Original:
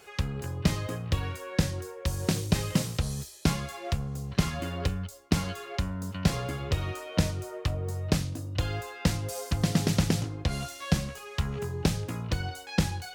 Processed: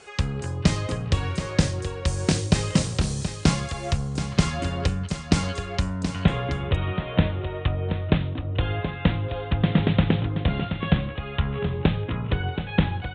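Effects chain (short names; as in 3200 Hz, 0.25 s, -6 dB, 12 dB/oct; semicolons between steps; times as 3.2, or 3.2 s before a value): steep low-pass 9700 Hz 96 dB/oct, from 6.02 s 3700 Hz; echo 0.726 s -9 dB; gain +5 dB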